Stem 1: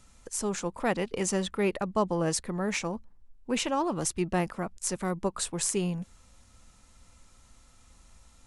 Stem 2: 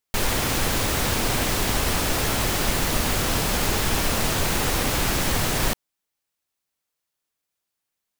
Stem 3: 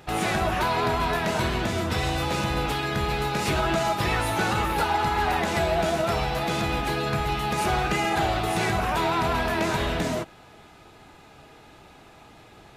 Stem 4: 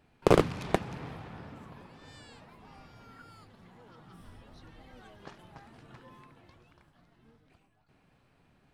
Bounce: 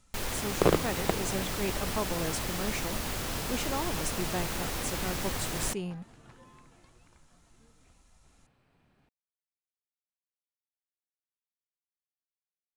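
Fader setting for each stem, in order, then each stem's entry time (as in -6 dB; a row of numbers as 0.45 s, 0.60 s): -6.5 dB, -11.0 dB, mute, -2.5 dB; 0.00 s, 0.00 s, mute, 0.35 s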